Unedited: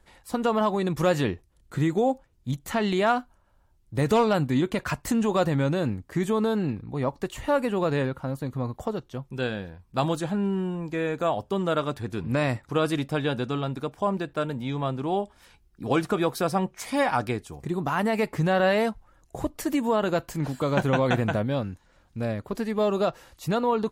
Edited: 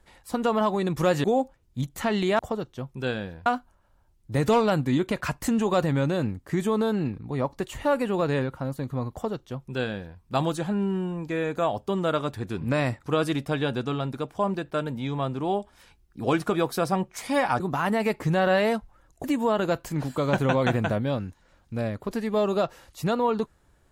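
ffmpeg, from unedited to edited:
-filter_complex "[0:a]asplit=6[a][b][c][d][e][f];[a]atrim=end=1.242[g];[b]atrim=start=1.938:end=3.092[h];[c]atrim=start=8.748:end=9.822[i];[d]atrim=start=3.088:end=17.232[j];[e]atrim=start=17.728:end=19.372[k];[f]atrim=start=19.678[l];[g][h]acrossfade=d=0.004:c1=hsin:c2=hsin[m];[m][i]acrossfade=d=0.004:c1=hsin:c2=hsin[n];[n][j]acrossfade=d=0.004:c1=hsin:c2=hsin[o];[o][k]acrossfade=d=0.004:c1=hsin:c2=hsin[p];[p][l]acrossfade=d=0.004:c1=hsin:c2=hsin"

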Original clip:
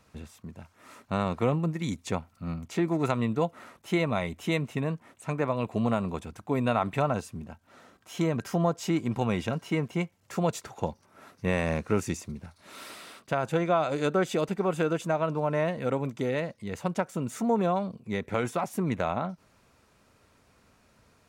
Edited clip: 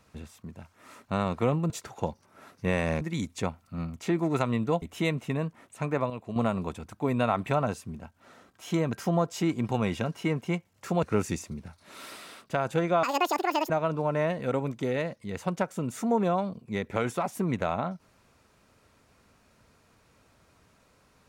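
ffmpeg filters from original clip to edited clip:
-filter_complex "[0:a]asplit=9[a][b][c][d][e][f][g][h][i];[a]atrim=end=1.702[j];[b]atrim=start=10.498:end=11.812[k];[c]atrim=start=1.698:end=3.512[l];[d]atrim=start=4.288:end=5.572[m];[e]atrim=start=5.568:end=5.832,asetpts=PTS-STARTPTS,volume=-8dB[n];[f]atrim=start=5.828:end=10.502[o];[g]atrim=start=11.808:end=13.814[p];[h]atrim=start=13.81:end=15.08,asetpts=PTS-STARTPTS,asetrate=83790,aresample=44100,atrim=end_sample=29477,asetpts=PTS-STARTPTS[q];[i]atrim=start=15.076[r];[j][k]acrossfade=d=0.004:c1=hsin:c2=hsin[s];[s][l]acrossfade=d=0.004:c1=hsin:c2=hsin[t];[t][m]acrossfade=d=0.004:c1=hsin:c2=hsin[u];[u][n]acrossfade=d=0.004:c1=hsin:c2=hsin[v];[v][o]acrossfade=d=0.004:c1=hsin:c2=hsin[w];[w][p]acrossfade=d=0.004:c1=hsin:c2=hsin[x];[x][q]acrossfade=d=0.004:c1=hsin:c2=hsin[y];[y][r]acrossfade=d=0.004:c1=hsin:c2=hsin"

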